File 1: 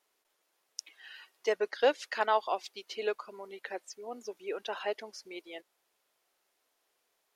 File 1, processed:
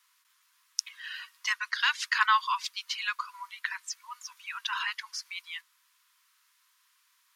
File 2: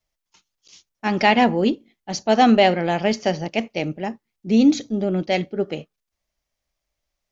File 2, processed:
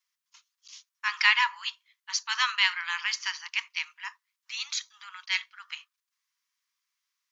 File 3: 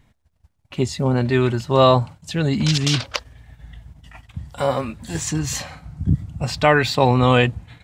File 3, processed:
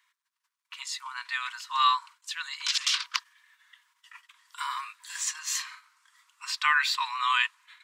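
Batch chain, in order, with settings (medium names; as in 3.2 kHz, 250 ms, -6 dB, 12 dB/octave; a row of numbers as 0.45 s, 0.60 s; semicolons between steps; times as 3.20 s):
Chebyshev high-pass 960 Hz, order 8; peak normalisation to -6 dBFS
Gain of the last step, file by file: +10.5 dB, +1.0 dB, -3.0 dB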